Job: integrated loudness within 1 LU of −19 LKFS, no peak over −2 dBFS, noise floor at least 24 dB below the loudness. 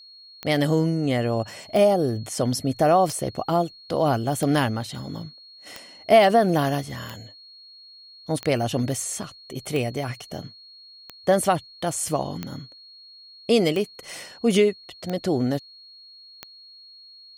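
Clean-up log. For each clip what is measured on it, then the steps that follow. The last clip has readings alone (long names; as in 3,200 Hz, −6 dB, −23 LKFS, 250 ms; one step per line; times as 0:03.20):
number of clicks 13; interfering tone 4,300 Hz; level of the tone −45 dBFS; integrated loudness −23.5 LKFS; sample peak −4.0 dBFS; target loudness −19.0 LKFS
→ click removal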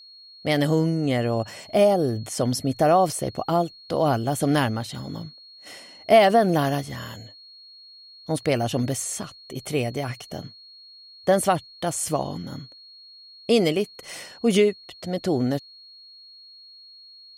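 number of clicks 0; interfering tone 4,300 Hz; level of the tone −45 dBFS
→ notch filter 4,300 Hz, Q 30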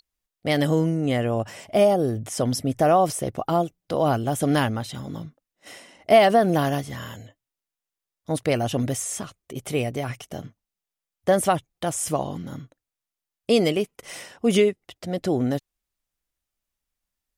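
interfering tone none found; integrated loudness −23.0 LKFS; sample peak −4.0 dBFS; target loudness −19.0 LKFS
→ level +4 dB
brickwall limiter −2 dBFS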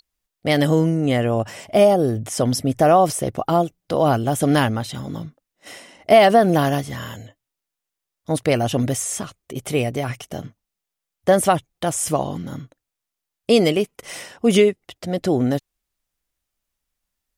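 integrated loudness −19.5 LKFS; sample peak −2.0 dBFS; background noise floor −84 dBFS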